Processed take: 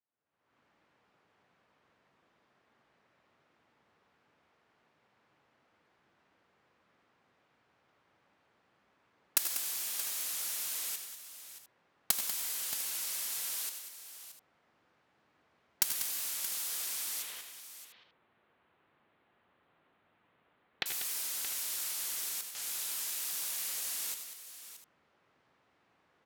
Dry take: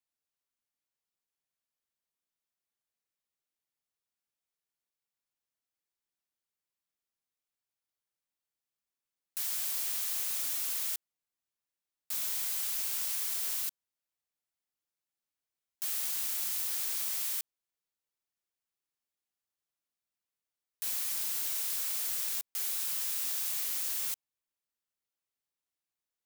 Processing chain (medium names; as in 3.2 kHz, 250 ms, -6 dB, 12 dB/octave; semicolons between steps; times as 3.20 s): recorder AGC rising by 53 dB/s; high-pass 95 Hz 12 dB/octave; level-controlled noise filter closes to 1.5 kHz, open at -29.5 dBFS; 17.22–20.86 s: steep low-pass 3.8 kHz 36 dB/octave; hard clipper -16.5 dBFS, distortion -7 dB; multi-tap echo 83/96/192/625/700 ms -12/-12/-10.5/-12.5/-19 dB; trim -1 dB